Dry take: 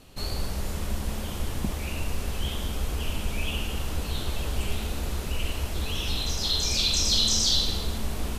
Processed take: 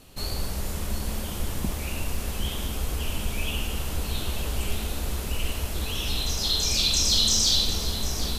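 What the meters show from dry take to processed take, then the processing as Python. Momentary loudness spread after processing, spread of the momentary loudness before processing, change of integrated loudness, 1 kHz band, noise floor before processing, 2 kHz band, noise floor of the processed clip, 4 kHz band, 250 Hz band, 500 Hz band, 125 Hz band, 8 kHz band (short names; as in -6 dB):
12 LU, 12 LU, +1.5 dB, +0.5 dB, -33 dBFS, +0.5 dB, -32 dBFS, +1.5 dB, 0.0 dB, +0.5 dB, 0.0 dB, +3.0 dB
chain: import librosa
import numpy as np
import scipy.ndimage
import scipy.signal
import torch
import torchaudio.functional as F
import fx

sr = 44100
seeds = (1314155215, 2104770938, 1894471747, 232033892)

y = fx.high_shelf(x, sr, hz=8000.0, db=7.0)
y = np.clip(y, -10.0 ** (-12.5 / 20.0), 10.0 ** (-12.5 / 20.0))
y = y + 10.0 ** (-12.0 / 20.0) * np.pad(y, (int(751 * sr / 1000.0), 0))[:len(y)]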